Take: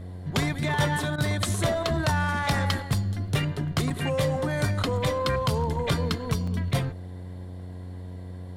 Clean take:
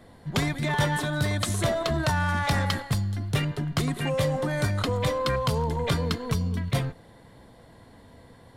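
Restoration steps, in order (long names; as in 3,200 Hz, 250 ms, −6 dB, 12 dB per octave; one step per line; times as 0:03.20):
hum removal 90.8 Hz, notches 8
repair the gap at 0:03.90/0:06.47, 4.5 ms
repair the gap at 0:01.16, 20 ms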